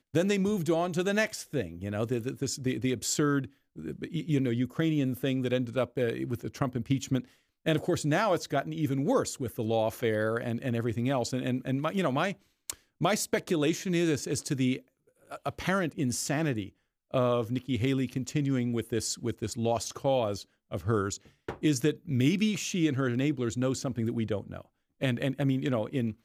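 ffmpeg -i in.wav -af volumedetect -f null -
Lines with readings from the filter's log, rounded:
mean_volume: -29.8 dB
max_volume: -13.6 dB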